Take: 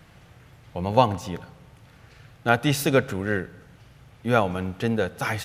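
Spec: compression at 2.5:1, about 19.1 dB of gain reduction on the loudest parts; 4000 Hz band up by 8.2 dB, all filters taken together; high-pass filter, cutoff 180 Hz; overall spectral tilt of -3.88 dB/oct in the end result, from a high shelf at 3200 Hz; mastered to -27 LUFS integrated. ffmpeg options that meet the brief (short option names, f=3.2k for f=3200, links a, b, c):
-af "highpass=180,highshelf=f=3.2k:g=8.5,equalizer=f=4k:t=o:g=4.5,acompressor=threshold=-42dB:ratio=2.5,volume=13dB"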